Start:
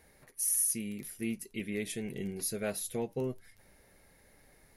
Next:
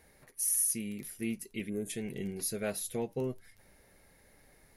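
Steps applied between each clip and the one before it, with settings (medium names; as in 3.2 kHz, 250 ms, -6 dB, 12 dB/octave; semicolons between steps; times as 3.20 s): time-frequency box 1.69–1.90 s, 1.7–6.2 kHz -24 dB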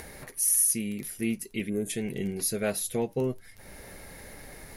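upward compressor, threshold -40 dBFS; trim +6 dB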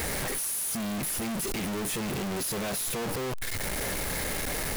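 one-bit comparator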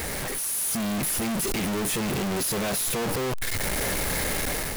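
level rider gain up to 4.5 dB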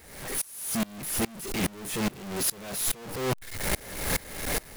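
sawtooth tremolo in dB swelling 2.4 Hz, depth 26 dB; trim +3.5 dB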